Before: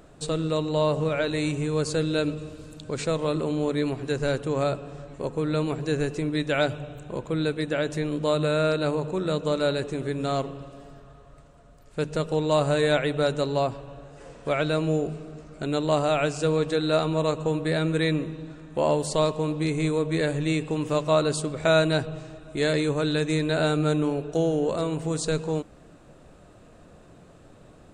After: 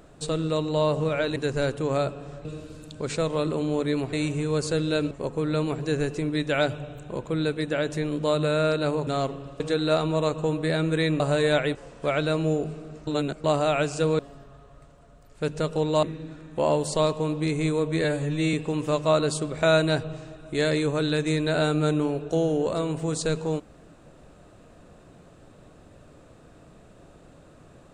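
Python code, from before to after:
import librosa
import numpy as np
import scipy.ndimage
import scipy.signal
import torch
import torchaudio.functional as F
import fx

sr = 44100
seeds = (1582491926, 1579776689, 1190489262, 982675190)

y = fx.edit(x, sr, fx.swap(start_s=1.36, length_s=0.98, other_s=4.02, other_length_s=1.09),
    fx.cut(start_s=9.07, length_s=1.15),
    fx.swap(start_s=10.75, length_s=1.84, other_s=16.62, other_length_s=1.6),
    fx.cut(start_s=13.14, length_s=1.04),
    fx.reverse_span(start_s=15.5, length_s=0.37),
    fx.stretch_span(start_s=20.23, length_s=0.33, factor=1.5), tone=tone)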